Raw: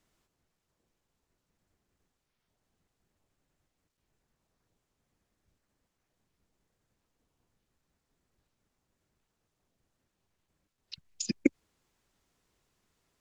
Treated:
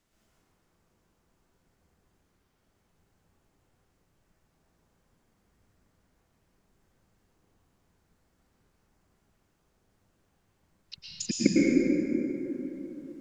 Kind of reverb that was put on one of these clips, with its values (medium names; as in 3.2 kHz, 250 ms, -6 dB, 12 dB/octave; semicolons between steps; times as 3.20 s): plate-style reverb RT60 3.9 s, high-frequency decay 0.35×, pre-delay 95 ms, DRR -8 dB